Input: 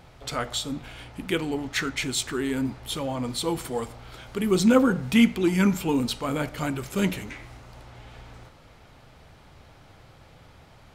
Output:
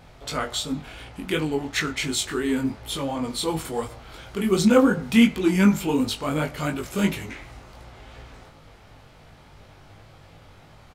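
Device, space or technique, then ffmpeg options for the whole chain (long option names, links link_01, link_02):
double-tracked vocal: -filter_complex "[0:a]asplit=2[link_01][link_02];[link_02]adelay=19,volume=-11dB[link_03];[link_01][link_03]amix=inputs=2:normalize=0,flanger=delay=19:depth=2.8:speed=2.8,volume=4.5dB"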